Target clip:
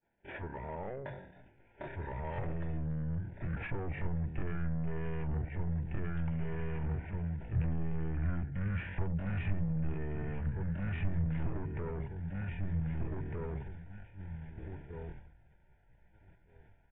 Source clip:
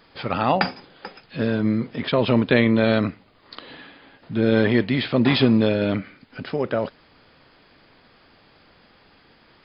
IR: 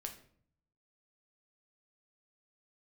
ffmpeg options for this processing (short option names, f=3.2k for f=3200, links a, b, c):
-filter_complex "[0:a]asplit=2[a][b];[b]aecho=0:1:886|1772|2658:0.251|0.0754|0.0226[c];[a][c]amix=inputs=2:normalize=0,acompressor=threshold=-30dB:ratio=10,asuperstop=centerf=1600:order=12:qfactor=2.9,agate=range=-33dB:threshold=-43dB:ratio=3:detection=peak,dynaudnorm=f=440:g=5:m=5dB,aresample=11025,asoftclip=type=tanh:threshold=-30.5dB,aresample=44100,lowpass=f=3k:w=0.5412,lowpass=f=3k:w=1.3066,bandreject=f=50:t=h:w=6,bandreject=f=100:t=h:w=6,bandreject=f=150:t=h:w=6,bandreject=f=200:t=h:w=6,bandreject=f=250:t=h:w=6,bandreject=f=300:t=h:w=6,bandreject=f=350:t=h:w=6,bandreject=f=400:t=h:w=6,bandreject=f=450:t=h:w=6,atempo=0.57,asubboost=boost=9:cutoff=120,asetrate=32097,aresample=44100,atempo=1.37395,volume=-3.5dB"